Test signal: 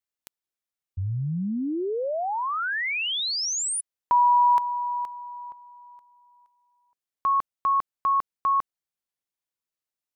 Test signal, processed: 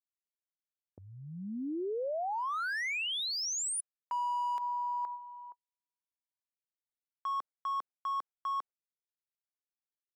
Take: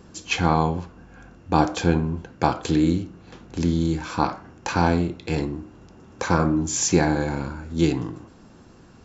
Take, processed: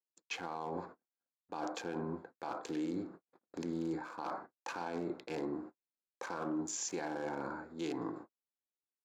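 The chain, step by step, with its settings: Wiener smoothing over 15 samples; gate -39 dBFS, range -55 dB; HPF 400 Hz 12 dB/oct; reverse; compressor 6:1, threshold -33 dBFS; reverse; limiter -29 dBFS

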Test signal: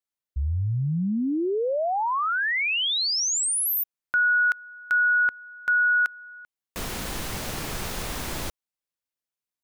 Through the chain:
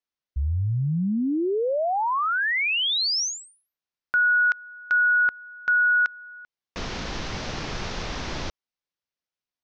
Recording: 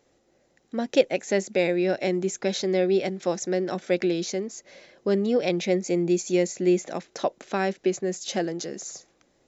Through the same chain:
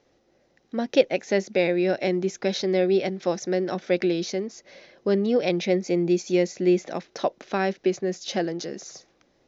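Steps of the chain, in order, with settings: steep low-pass 6100 Hz 48 dB/oct; gain +1 dB

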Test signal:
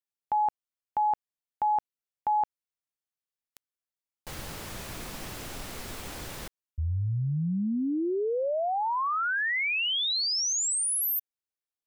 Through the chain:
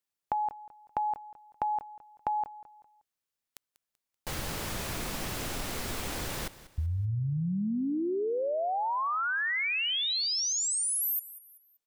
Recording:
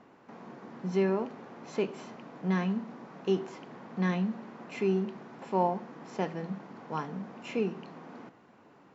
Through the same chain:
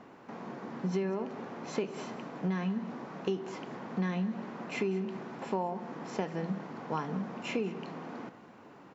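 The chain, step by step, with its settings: compressor 10:1, threshold -33 dBFS; feedback echo 0.192 s, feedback 36%, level -17 dB; gain +4.5 dB

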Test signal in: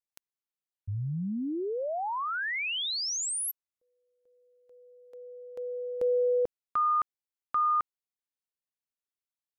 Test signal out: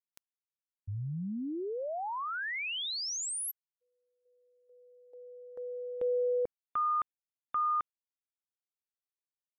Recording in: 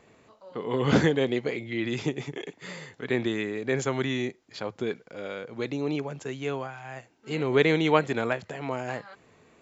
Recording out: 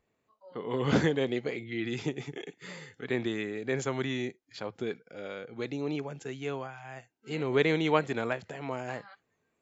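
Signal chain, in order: spectral noise reduction 16 dB; gain -4 dB

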